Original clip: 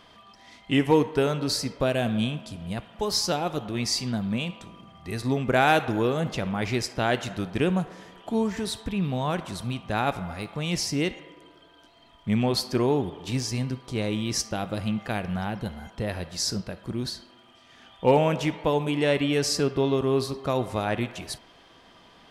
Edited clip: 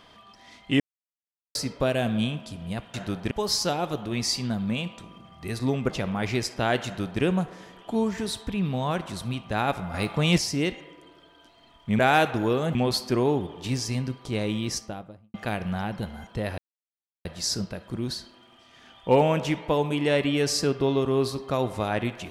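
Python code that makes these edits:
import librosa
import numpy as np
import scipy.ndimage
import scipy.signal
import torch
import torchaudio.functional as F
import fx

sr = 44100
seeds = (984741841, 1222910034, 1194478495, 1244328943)

y = fx.studio_fade_out(x, sr, start_s=14.18, length_s=0.79)
y = fx.edit(y, sr, fx.silence(start_s=0.8, length_s=0.75),
    fx.move(start_s=5.53, length_s=0.76, to_s=12.38),
    fx.duplicate(start_s=7.24, length_s=0.37, to_s=2.94),
    fx.clip_gain(start_s=10.33, length_s=0.44, db=7.0),
    fx.insert_silence(at_s=16.21, length_s=0.67), tone=tone)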